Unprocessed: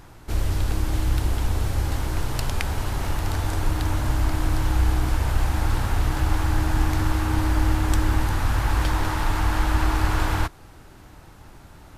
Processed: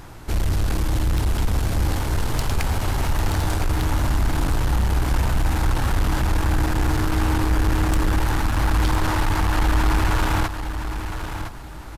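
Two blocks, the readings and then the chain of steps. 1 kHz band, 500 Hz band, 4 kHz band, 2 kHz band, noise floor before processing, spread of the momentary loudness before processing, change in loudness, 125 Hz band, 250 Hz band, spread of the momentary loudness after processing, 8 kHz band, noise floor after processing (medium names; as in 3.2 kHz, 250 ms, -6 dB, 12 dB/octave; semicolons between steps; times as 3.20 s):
+2.5 dB, +3.5 dB, +3.0 dB, +2.5 dB, -47 dBFS, 5 LU, +2.0 dB, +1.5 dB, +3.0 dB, 7 LU, +2.5 dB, -35 dBFS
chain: saturation -21.5 dBFS, distortion -10 dB; on a send: feedback delay 1011 ms, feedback 26%, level -9 dB; on the sum: trim +6 dB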